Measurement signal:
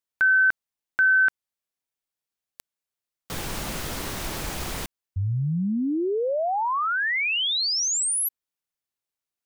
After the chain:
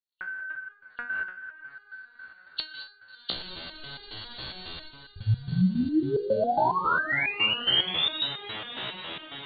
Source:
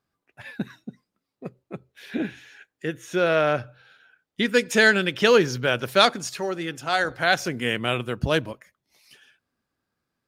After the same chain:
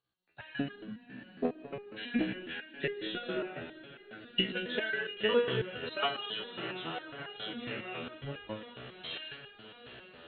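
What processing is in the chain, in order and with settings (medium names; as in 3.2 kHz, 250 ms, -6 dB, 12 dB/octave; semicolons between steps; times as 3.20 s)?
knee-point frequency compression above 2.7 kHz 4:1; recorder AGC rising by 37 dB/s, up to +30 dB; hum notches 50/100/150/200/250 Hz; level held to a coarse grid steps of 16 dB; echo that smears into a reverb 671 ms, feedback 75%, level -14 dB; gated-style reverb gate 240 ms rising, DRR 7.5 dB; resonator arpeggio 7.3 Hz 63–410 Hz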